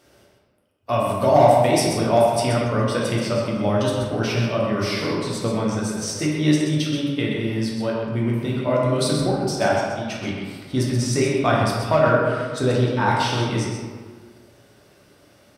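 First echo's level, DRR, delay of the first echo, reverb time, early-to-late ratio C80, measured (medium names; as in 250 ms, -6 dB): -7.0 dB, -4.5 dB, 129 ms, 1.6 s, 1.5 dB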